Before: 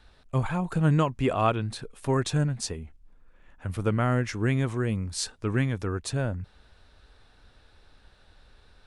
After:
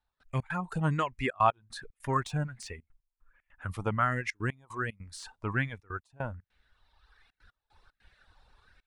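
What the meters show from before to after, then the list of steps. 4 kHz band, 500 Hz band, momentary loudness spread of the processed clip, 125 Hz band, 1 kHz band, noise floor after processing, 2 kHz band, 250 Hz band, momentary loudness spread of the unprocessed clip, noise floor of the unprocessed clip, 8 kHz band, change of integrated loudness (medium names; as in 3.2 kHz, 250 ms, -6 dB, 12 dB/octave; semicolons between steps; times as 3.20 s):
-8.5 dB, -7.0 dB, 17 LU, -8.0 dB, +0.5 dB, under -85 dBFS, +1.0 dB, -9.0 dB, 11 LU, -59 dBFS, -12.0 dB, -5.0 dB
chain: reverb removal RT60 1.5 s; de-esser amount 75%; peaking EQ 370 Hz -4 dB 2 oct; trance gate "..xx.xxxxxxxx.x" 150 bpm -24 dB; sweeping bell 1.3 Hz 830–2200 Hz +12 dB; trim -4 dB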